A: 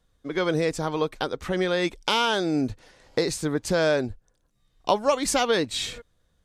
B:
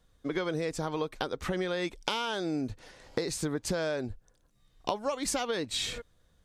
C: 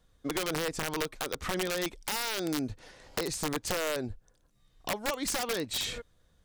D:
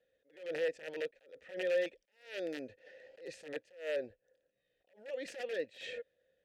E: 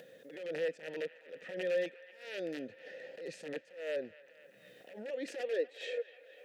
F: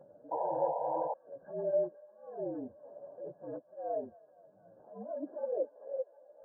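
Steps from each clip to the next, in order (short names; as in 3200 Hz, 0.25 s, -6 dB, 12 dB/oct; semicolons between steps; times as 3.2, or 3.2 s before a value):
compressor, threshold -30 dBFS, peak gain reduction 13.5 dB; gain +1.5 dB
wrapped overs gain 23.5 dB
vowel filter e; attack slew limiter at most 150 dB/s; gain +6 dB
upward compressor, threshold -37 dBFS; high-pass sweep 170 Hz -> 450 Hz, 4.74–5.77; band-limited delay 0.246 s, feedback 78%, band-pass 1600 Hz, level -15 dB; gain -1.5 dB
inharmonic rescaling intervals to 115%; painted sound noise, 0.31–1.14, 450–1000 Hz -38 dBFS; brick-wall FIR low-pass 1700 Hz; gain +3.5 dB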